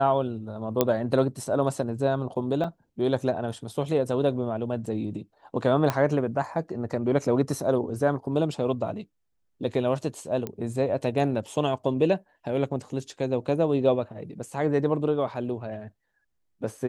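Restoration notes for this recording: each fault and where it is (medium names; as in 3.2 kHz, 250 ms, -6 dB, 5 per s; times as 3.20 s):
0.81 s: pop -7 dBFS
2.64 s: dropout 4.2 ms
5.90 s: pop -11 dBFS
10.47 s: pop -18 dBFS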